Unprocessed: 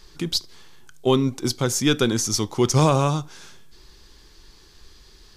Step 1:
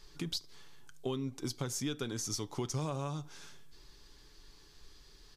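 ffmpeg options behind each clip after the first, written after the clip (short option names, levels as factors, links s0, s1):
-af "aecho=1:1:7:0.32,acompressor=threshold=0.0562:ratio=6,volume=0.376"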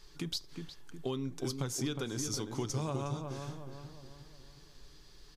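-filter_complex "[0:a]asplit=2[s0][s1];[s1]adelay=362,lowpass=f=1500:p=1,volume=0.562,asplit=2[s2][s3];[s3]adelay=362,lowpass=f=1500:p=1,volume=0.49,asplit=2[s4][s5];[s5]adelay=362,lowpass=f=1500:p=1,volume=0.49,asplit=2[s6][s7];[s7]adelay=362,lowpass=f=1500:p=1,volume=0.49,asplit=2[s8][s9];[s9]adelay=362,lowpass=f=1500:p=1,volume=0.49,asplit=2[s10][s11];[s11]adelay=362,lowpass=f=1500:p=1,volume=0.49[s12];[s0][s2][s4][s6][s8][s10][s12]amix=inputs=7:normalize=0"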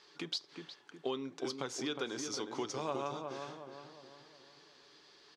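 -af "highpass=380,lowpass=4400,volume=1.41"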